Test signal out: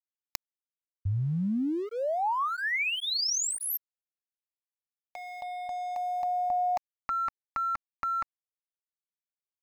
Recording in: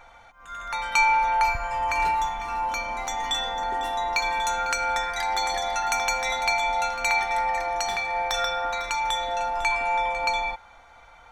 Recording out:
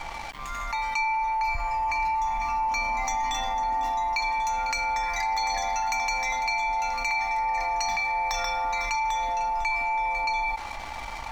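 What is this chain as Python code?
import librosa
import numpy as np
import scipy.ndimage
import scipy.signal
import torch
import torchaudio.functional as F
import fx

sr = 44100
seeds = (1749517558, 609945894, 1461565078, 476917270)

y = x + 0.39 * np.pad(x, (int(3.5 * sr / 1000.0), 0))[:len(x)]
y = fx.rider(y, sr, range_db=4, speed_s=0.5)
y = fx.fixed_phaser(y, sr, hz=2200.0, stages=8)
y = np.sign(y) * np.maximum(np.abs(y) - 10.0 ** (-55.5 / 20.0), 0.0)
y = fx.env_flatten(y, sr, amount_pct=70)
y = y * librosa.db_to_amplitude(-6.0)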